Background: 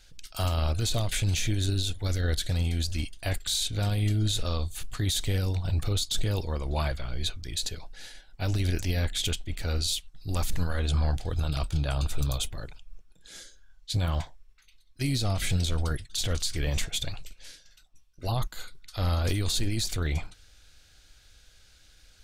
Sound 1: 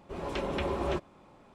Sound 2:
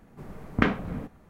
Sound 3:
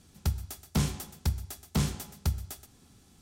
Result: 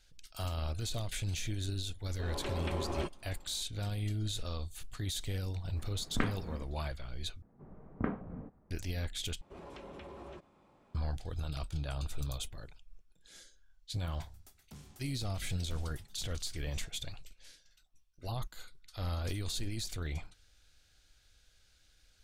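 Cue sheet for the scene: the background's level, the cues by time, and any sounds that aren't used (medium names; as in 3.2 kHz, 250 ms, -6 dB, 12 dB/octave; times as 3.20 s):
background -9.5 dB
2.09 s: add 1 -6 dB
5.58 s: add 2 -10.5 dB
7.42 s: replace with 2 -10.5 dB + low-pass 1.1 kHz
9.41 s: replace with 1 -8.5 dB + compression, threshold -36 dBFS
13.96 s: add 3 -17.5 dB + peak limiter -26.5 dBFS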